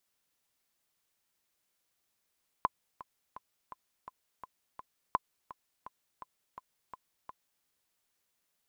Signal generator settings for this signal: metronome 168 bpm, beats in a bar 7, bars 2, 1.02 kHz, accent 18 dB -13.5 dBFS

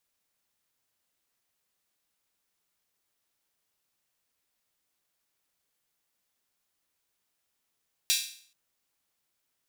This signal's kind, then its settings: open hi-hat length 0.43 s, high-pass 3.3 kHz, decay 0.52 s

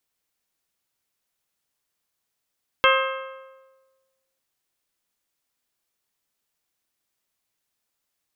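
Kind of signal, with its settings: metal hit bell, lowest mode 531 Hz, modes 7, decay 1.37 s, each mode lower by 0.5 dB, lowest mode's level -18 dB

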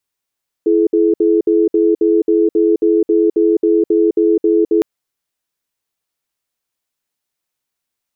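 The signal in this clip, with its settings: cadence 333 Hz, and 426 Hz, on 0.21 s, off 0.06 s, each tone -12 dBFS 4.16 s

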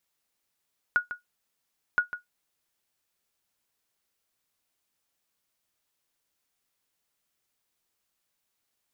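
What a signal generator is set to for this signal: sonar ping 1.45 kHz, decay 0.14 s, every 1.02 s, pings 2, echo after 0.15 s, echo -12 dB -14 dBFS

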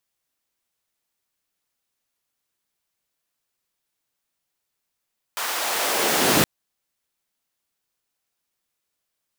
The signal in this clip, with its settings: swept filtered noise pink, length 1.07 s highpass, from 910 Hz, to 140 Hz, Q 1.1, linear, gain ramp +9 dB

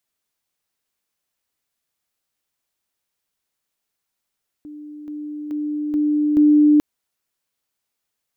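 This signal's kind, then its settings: level ladder 298 Hz -33.5 dBFS, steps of 6 dB, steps 5, 0.43 s 0.00 s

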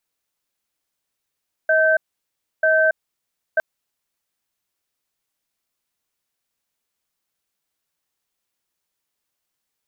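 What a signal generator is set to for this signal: cadence 635 Hz, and 1.55 kHz, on 0.28 s, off 0.66 s, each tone -16 dBFS 1.91 s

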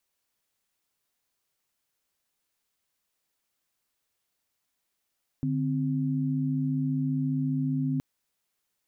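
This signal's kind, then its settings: chord D3/C4 sine, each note -27.5 dBFS 2.57 s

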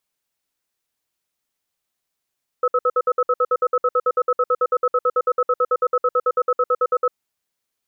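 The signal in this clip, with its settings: cadence 497 Hz, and 1.29 kHz, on 0.05 s, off 0.06 s, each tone -17 dBFS 4.49 s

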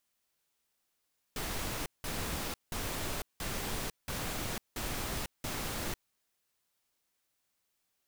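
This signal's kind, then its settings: noise bursts pink, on 0.50 s, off 0.18 s, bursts 7, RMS -36.5 dBFS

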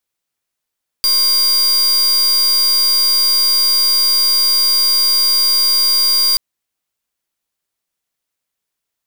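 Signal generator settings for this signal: pulse 4.78 kHz, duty 42% -13 dBFS 5.33 s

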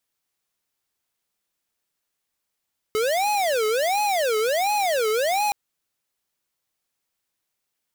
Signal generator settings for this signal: siren wail 428–840 Hz 1.4 per s square -22 dBFS 2.57 s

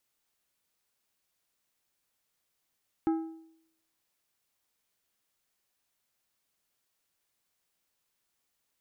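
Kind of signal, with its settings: metal hit plate, lowest mode 324 Hz, decay 0.72 s, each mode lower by 10 dB, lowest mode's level -22 dB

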